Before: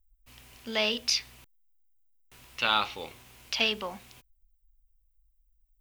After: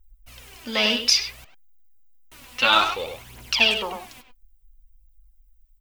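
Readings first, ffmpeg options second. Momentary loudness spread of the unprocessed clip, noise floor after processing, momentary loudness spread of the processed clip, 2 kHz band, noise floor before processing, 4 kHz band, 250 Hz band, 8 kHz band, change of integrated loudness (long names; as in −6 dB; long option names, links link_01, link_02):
19 LU, −57 dBFS, 21 LU, +9.0 dB, −70 dBFS, +8.0 dB, +7.0 dB, +8.5 dB, +8.0 dB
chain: -filter_complex "[0:a]aphaser=in_gain=1:out_gain=1:delay=4.2:decay=0.63:speed=0.59:type=triangular,asplit=2[link_01][link_02];[link_02]adelay=100,highpass=300,lowpass=3400,asoftclip=type=hard:threshold=-20.5dB,volume=-6dB[link_03];[link_01][link_03]amix=inputs=2:normalize=0,volume=5.5dB"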